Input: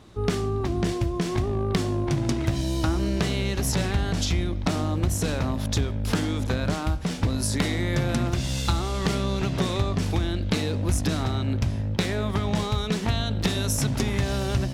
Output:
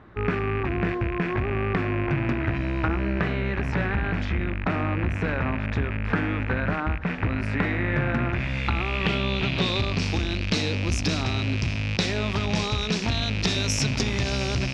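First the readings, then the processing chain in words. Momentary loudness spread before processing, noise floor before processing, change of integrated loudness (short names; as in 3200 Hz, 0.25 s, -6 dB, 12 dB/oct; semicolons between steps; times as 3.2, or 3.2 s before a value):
2 LU, -29 dBFS, 0.0 dB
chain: rattling part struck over -33 dBFS, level -21 dBFS; low-pass sweep 1700 Hz -> 5400 Hz, 8.24–10.14; core saturation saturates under 330 Hz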